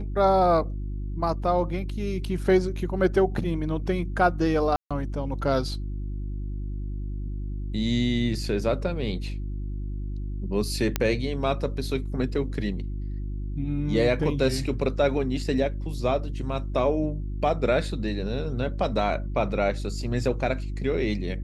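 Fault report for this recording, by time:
hum 50 Hz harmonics 7 -31 dBFS
4.76–4.91 s: dropout 146 ms
10.96 s: pop -8 dBFS

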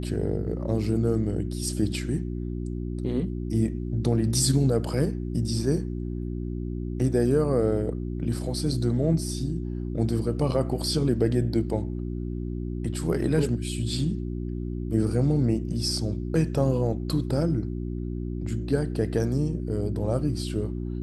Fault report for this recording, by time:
hum 60 Hz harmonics 6 -31 dBFS

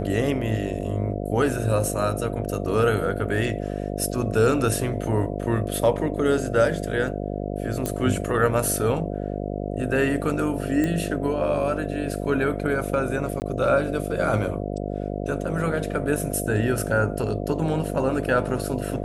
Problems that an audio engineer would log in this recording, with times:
buzz 50 Hz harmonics 14 -29 dBFS
7.86 s: pop -12 dBFS
10.84 s: pop -13 dBFS
13.40–13.42 s: dropout 19 ms

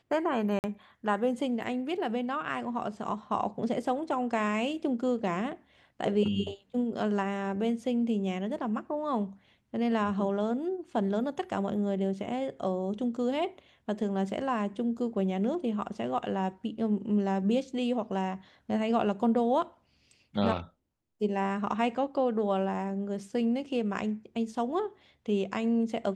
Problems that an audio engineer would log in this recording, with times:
0.59–0.64 s: dropout 49 ms

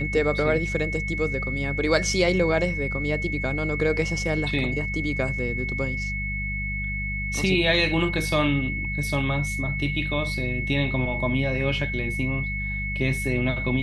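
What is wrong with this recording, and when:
hum 50 Hz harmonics 4 -31 dBFS
whine 2.2 kHz -29 dBFS

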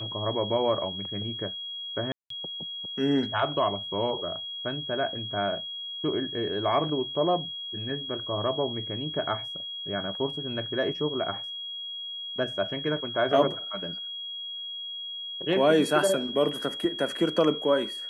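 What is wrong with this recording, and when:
whine 3.3 kHz -34 dBFS
2.12–2.30 s: dropout 183 ms

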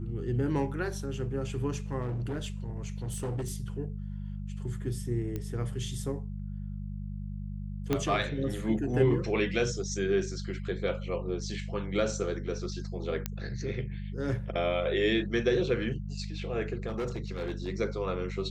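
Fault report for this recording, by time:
hum 50 Hz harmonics 4 -37 dBFS
2.01–3.52 s: clipped -29.5 dBFS
5.36 s: pop -22 dBFS
7.93 s: pop -14 dBFS
13.26 s: pop -15 dBFS
16.87–17.68 s: clipped -29 dBFS

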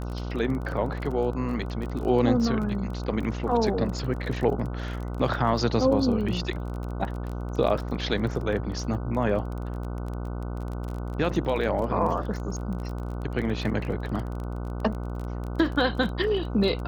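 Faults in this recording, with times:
buzz 60 Hz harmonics 25 -32 dBFS
crackle 26 per s -32 dBFS

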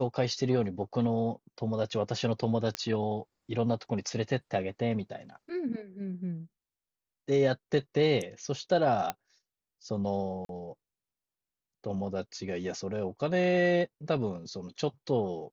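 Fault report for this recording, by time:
2.75 s: pop -15 dBFS
9.10 s: pop -15 dBFS
10.45–10.49 s: dropout 42 ms

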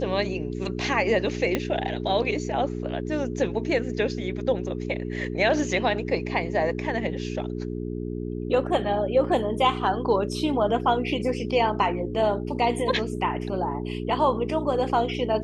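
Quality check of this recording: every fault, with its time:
hum 60 Hz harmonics 7 -31 dBFS
1.55 s: pop -10 dBFS

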